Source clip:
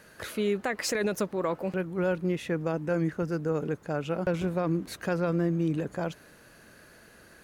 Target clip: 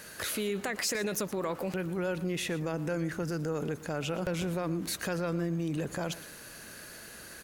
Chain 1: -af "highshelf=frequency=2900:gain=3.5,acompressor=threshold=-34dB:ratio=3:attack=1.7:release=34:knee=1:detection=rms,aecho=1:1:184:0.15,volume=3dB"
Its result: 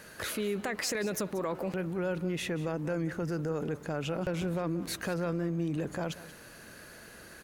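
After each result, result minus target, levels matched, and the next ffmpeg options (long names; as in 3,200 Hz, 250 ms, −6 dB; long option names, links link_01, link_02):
echo 66 ms late; 8,000 Hz band −3.0 dB
-af "highshelf=frequency=2900:gain=3.5,acompressor=threshold=-34dB:ratio=3:attack=1.7:release=34:knee=1:detection=rms,aecho=1:1:118:0.15,volume=3dB"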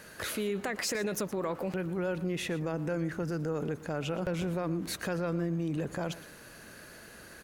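8,000 Hz band −3.0 dB
-af "highshelf=frequency=2900:gain=11,acompressor=threshold=-34dB:ratio=3:attack=1.7:release=34:knee=1:detection=rms,aecho=1:1:118:0.15,volume=3dB"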